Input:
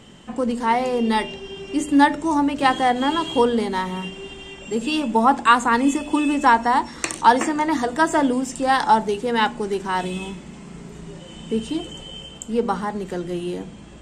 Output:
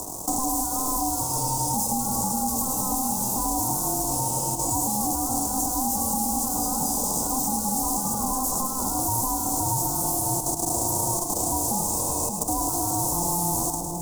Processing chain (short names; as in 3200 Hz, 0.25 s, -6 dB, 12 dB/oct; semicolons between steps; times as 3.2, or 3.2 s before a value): spectral whitening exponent 0.3; bell 130 Hz -5 dB 1.1 oct; spectral gain 8.05–8.87, 410–1600 Hz +9 dB; fuzz box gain 38 dB, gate -45 dBFS; level quantiser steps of 20 dB; Chebyshev band-stop 480–6800 Hz, order 3; ring modulator 520 Hz; split-band echo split 800 Hz, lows 0.58 s, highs 0.106 s, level -7 dB; three-band squash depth 70%